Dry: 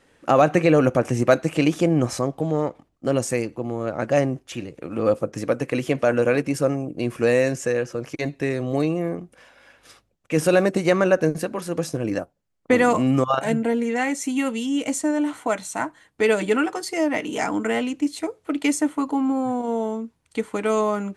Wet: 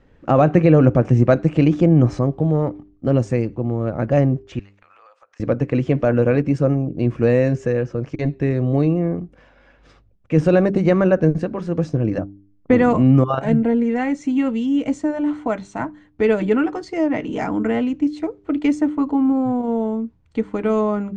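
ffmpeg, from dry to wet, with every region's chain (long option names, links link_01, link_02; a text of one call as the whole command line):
ffmpeg -i in.wav -filter_complex "[0:a]asettb=1/sr,asplit=3[link_01][link_02][link_03];[link_01]atrim=end=4.594[link_04];[link_02]atrim=start=4.59:end=5.4,asetpts=PTS-STARTPTS,afade=type=in:duration=0.004:curve=qsin,afade=type=out:start_time=0.806:duration=0.004:curve=qsin,highpass=frequency=980:width=0.5412,highpass=frequency=980:width=1.3066,acompressor=threshold=-45dB:ratio=8:attack=3.2:release=140:knee=1:detection=peak[link_05];[link_03]atrim=start=5.396[link_06];[link_04][link_05]acrossfade=duration=0.004:curve1=hsin:curve2=qsin[link_07];[link_07][link_06]acrossfade=duration=0.004:curve1=qsin:curve2=hsin,lowpass=frequency=7400:width=0.5412,lowpass=frequency=7400:width=1.3066,aemphasis=mode=reproduction:type=riaa,bandreject=frequency=99.63:width_type=h:width=4,bandreject=frequency=199.26:width_type=h:width=4,bandreject=frequency=298.89:width_type=h:width=4,bandreject=frequency=398.52:width_type=h:width=4,volume=-1dB" out.wav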